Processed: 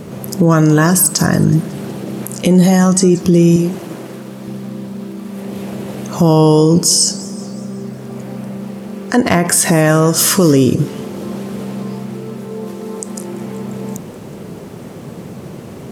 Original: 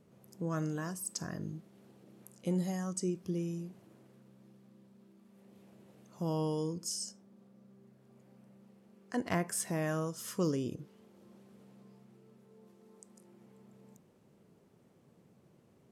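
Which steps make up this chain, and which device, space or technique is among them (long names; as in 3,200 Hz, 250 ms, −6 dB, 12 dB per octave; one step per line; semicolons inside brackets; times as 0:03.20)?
loud club master (downward compressor 1.5 to 1, threshold −41 dBFS, peak gain reduction 5.5 dB; hard clipping −26.5 dBFS, distortion −38 dB; boost into a limiter +35.5 dB)
0:03.56–0:04.48: high-pass filter 250 Hz 6 dB per octave
feedback echo with a swinging delay time 185 ms, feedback 53%, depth 187 cents, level −20 dB
level −1.5 dB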